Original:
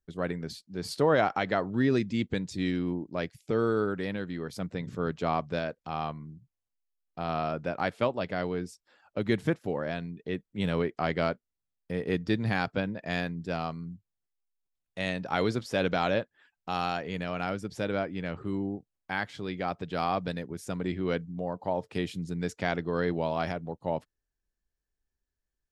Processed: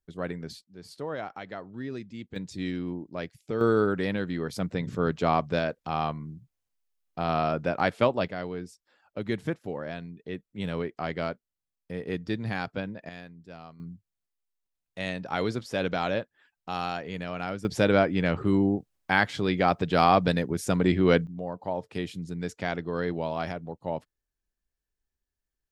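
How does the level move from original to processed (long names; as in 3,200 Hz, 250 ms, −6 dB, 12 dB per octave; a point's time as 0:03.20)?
−1.5 dB
from 0:00.64 −11 dB
from 0:02.36 −2.5 dB
from 0:03.61 +4.5 dB
from 0:08.28 −3 dB
from 0:13.09 −13 dB
from 0:13.80 −1 dB
from 0:17.65 +9 dB
from 0:21.27 −1 dB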